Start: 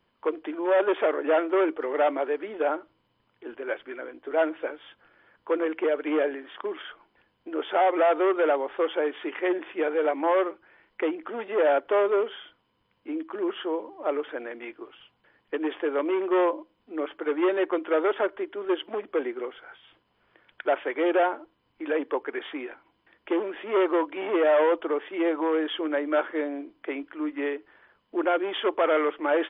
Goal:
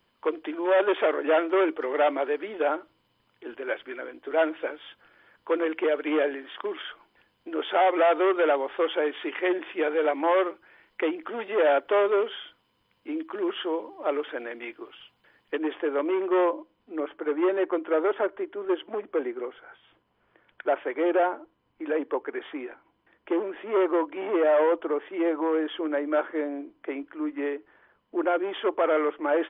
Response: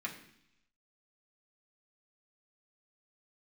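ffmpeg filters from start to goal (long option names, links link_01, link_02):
-af "asetnsamples=nb_out_samples=441:pad=0,asendcmd='15.58 highshelf g -3.5;17 highshelf g -11.5',highshelf=frequency=3200:gain=8.5"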